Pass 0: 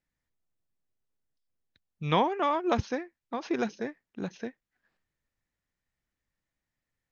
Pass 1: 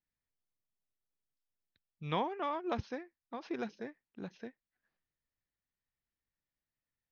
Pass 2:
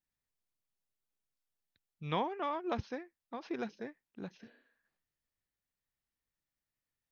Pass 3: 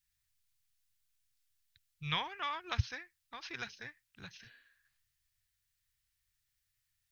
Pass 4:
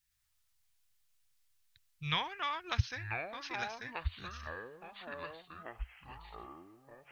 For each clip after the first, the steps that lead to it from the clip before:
steep low-pass 5700 Hz 36 dB/oct; gain -9 dB
spectral repair 4.45–4.8, 230–4600 Hz both
EQ curve 120 Hz 0 dB, 210 Hz -25 dB, 580 Hz -23 dB, 1600 Hz -4 dB, 4100 Hz 0 dB; gain +10 dB
echoes that change speed 0.112 s, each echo -6 st, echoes 3, each echo -6 dB; gain +1.5 dB

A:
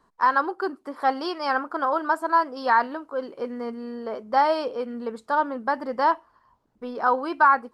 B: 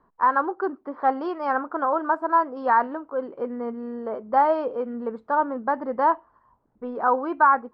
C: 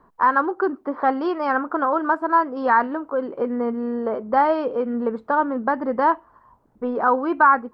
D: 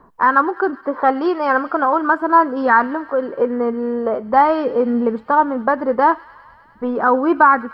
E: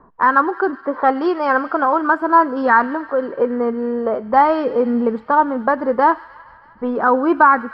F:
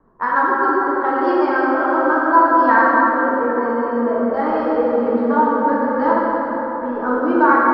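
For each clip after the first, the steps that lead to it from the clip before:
LPF 1400 Hz 12 dB/oct; gain +1.5 dB
dynamic EQ 740 Hz, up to -7 dB, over -31 dBFS, Q 0.76; gain +7.5 dB
phaser 0.41 Hz, delay 2.5 ms, feedback 28%; thin delay 0.101 s, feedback 79%, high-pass 2200 Hz, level -15.5 dB; gain +4.5 dB
low-pass opened by the level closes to 1900 Hz, open at -13.5 dBFS; thin delay 0.156 s, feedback 73%, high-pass 1800 Hz, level -19 dB
rotary speaker horn 7.5 Hz, later 0.8 Hz, at 1.84; plate-style reverb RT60 4.6 s, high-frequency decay 0.4×, DRR -8 dB; gain -6 dB

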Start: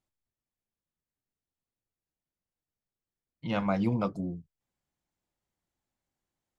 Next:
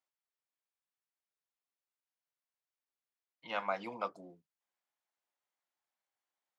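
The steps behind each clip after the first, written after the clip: HPF 760 Hz 12 dB/oct; high shelf 4800 Hz -10 dB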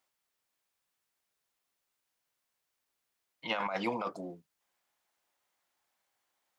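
negative-ratio compressor -40 dBFS, ratio -1; gain +7.5 dB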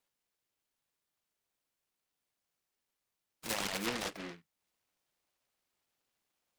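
noise-modulated delay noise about 1700 Hz, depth 0.27 ms; gain -2.5 dB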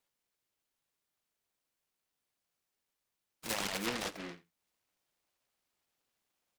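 echo 84 ms -20 dB

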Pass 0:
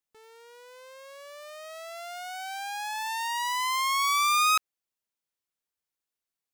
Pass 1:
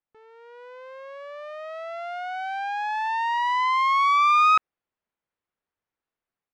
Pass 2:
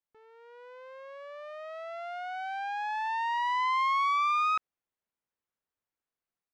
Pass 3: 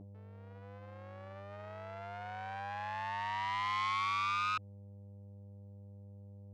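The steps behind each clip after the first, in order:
LPF 1900 Hz 12 dB/oct; AGC gain up to 5.5 dB; gain +2 dB
limiter -17 dBFS, peak gain reduction 5 dB; gain -5.5 dB
buzz 100 Hz, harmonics 4, -45 dBFS -6 dB/oct; core saturation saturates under 1600 Hz; gain -3 dB

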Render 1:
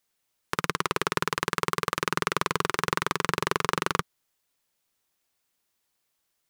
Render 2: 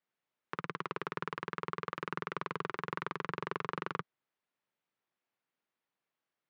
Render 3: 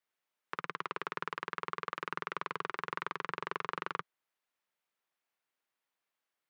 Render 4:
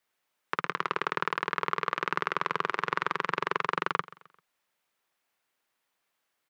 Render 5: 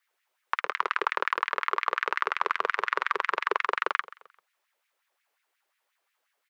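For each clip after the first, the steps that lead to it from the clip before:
HPF 120 Hz 24 dB/oct; limiter -10 dBFS, peak gain reduction 6.5 dB; LPF 2400 Hz 12 dB/oct; gain -6 dB
low shelf 350 Hz -12 dB; gain +2 dB
feedback echo 0.131 s, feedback 42%, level -20 dB; gain +8.5 dB
LFO high-pass sine 5.6 Hz 410–2100 Hz

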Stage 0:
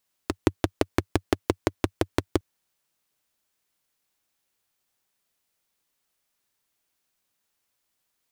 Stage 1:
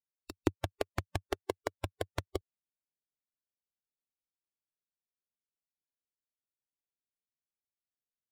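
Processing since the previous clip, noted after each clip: Wiener smoothing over 41 samples; spectral noise reduction 11 dB; gain -7 dB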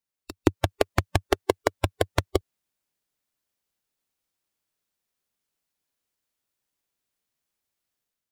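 AGC gain up to 7 dB; gain +5.5 dB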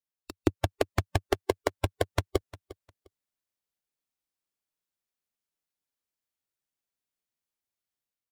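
sample leveller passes 1; feedback echo 0.353 s, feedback 20%, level -19 dB; gain -6.5 dB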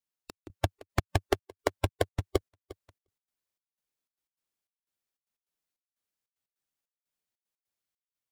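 step gate "xxx..xxx.x." 151 bpm -24 dB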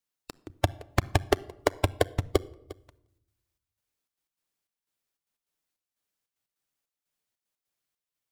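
shoebox room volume 2600 m³, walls furnished, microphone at 0.4 m; gain +3.5 dB

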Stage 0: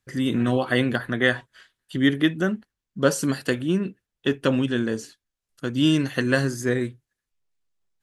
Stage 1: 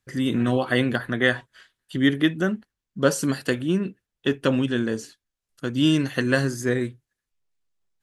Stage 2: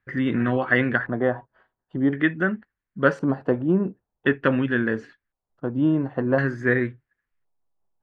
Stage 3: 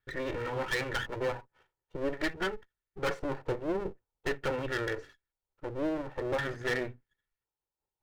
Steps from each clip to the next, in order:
nothing audible
vocal rider within 3 dB 0.5 s; LFO low-pass square 0.47 Hz 850–1800 Hz
minimum comb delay 2.2 ms; overloaded stage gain 20.5 dB; gain -5 dB

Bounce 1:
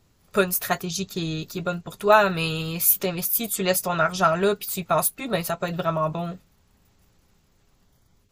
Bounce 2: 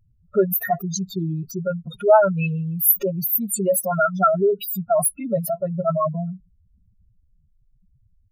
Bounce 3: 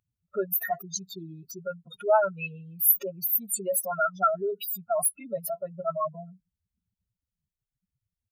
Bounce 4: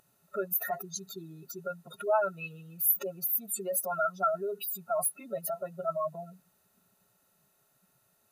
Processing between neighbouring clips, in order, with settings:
spectral contrast raised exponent 3.8; gain +3.5 dB
HPF 810 Hz 6 dB/oct; gain -4 dB
per-bin compression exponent 0.6; gain -6.5 dB

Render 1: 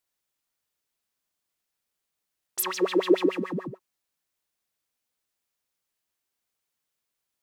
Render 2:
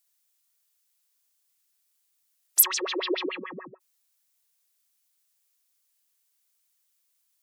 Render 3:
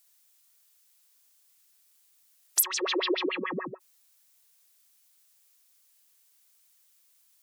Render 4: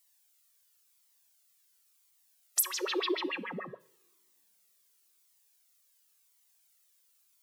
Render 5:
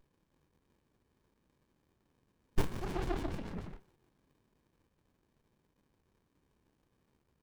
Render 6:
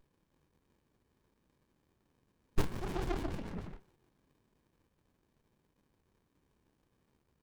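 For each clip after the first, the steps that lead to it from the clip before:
HPF 920 Hz 6 dB/oct; spectral gate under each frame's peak -20 dB strong; high shelf 4100 Hz +12 dB
compressor 2.5:1, threshold -36 dBFS, peak gain reduction 15.5 dB; gain +8 dB
two-slope reverb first 0.58 s, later 3.1 s, from -27 dB, DRR 15.5 dB; cascading flanger falling 0.94 Hz
doubler 29 ms -8 dB; running maximum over 65 samples; gain +1 dB
self-modulated delay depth 0.46 ms

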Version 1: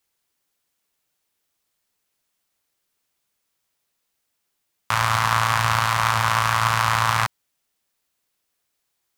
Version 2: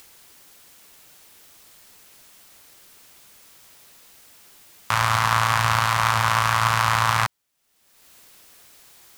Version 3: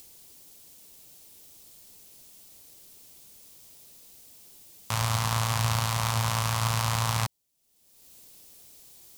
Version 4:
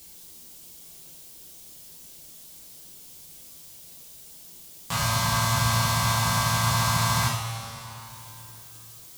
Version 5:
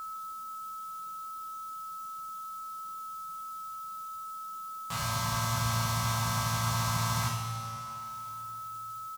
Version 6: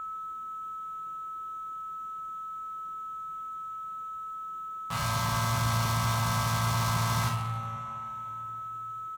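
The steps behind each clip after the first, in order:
upward compressor, threshold -30 dBFS
bell 1500 Hz -14.5 dB 1.9 oct
two-slope reverb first 0.56 s, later 3.5 s, from -14 dB, DRR -8.5 dB; gain -4 dB
whine 1300 Hz -29 dBFS; feedback echo 0.159 s, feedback 60%, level -14.5 dB; gain -8 dB
Wiener smoothing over 9 samples; overloaded stage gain 26 dB; gain +3.5 dB

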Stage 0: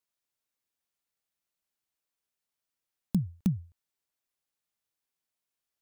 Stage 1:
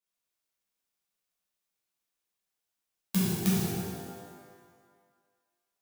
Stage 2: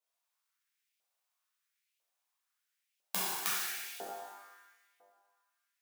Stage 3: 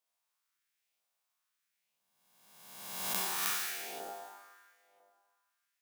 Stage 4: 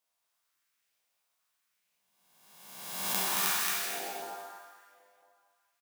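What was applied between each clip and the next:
spectral whitening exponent 0.3; de-hum 67.36 Hz, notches 35; shimmer reverb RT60 1.6 s, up +12 st, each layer -8 dB, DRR -9.5 dB; gain -8 dB
LFO high-pass saw up 1 Hz 550–2600 Hz
spectral swells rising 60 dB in 1.33 s; gain -2.5 dB
flange 1.9 Hz, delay 9.7 ms, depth 3.2 ms, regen -47%; on a send: feedback echo 0.223 s, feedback 23%, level -3 dB; on the sum: gain +7 dB

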